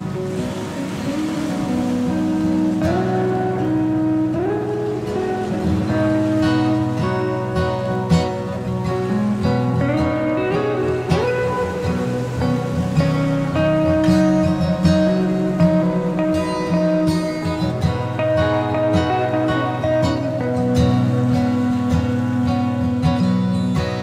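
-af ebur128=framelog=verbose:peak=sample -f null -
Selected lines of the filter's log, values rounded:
Integrated loudness:
  I:         -19.1 LUFS
  Threshold: -29.1 LUFS
Loudness range:
  LRA:         2.8 LU
  Threshold: -39.0 LUFS
  LRA low:   -20.0 LUFS
  LRA high:  -17.2 LUFS
Sample peak:
  Peak:       -4.1 dBFS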